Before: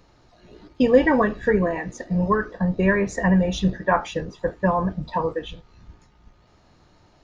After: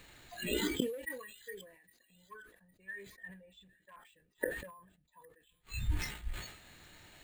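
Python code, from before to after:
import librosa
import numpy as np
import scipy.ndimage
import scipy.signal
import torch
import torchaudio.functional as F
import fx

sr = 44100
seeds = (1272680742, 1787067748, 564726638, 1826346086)

y = np.clip(x, -10.0 ** (-12.5 / 20.0), 10.0 ** (-12.5 / 20.0))
y = fx.gate_flip(y, sr, shuts_db=-29.0, range_db=-41)
y = fx.band_shelf(y, sr, hz=2600.0, db=13.5, octaves=1.7)
y = np.repeat(y[::4], 4)[:len(y)]
y = fx.high_shelf(y, sr, hz=6100.0, db=-8.0, at=(1.72, 3.96))
y = fx.noise_reduce_blind(y, sr, reduce_db=17)
y = fx.echo_wet_highpass(y, sr, ms=809, feedback_pct=32, hz=3200.0, wet_db=-18.5)
y = fx.sustainer(y, sr, db_per_s=77.0)
y = F.gain(torch.from_numpy(y), 12.0).numpy()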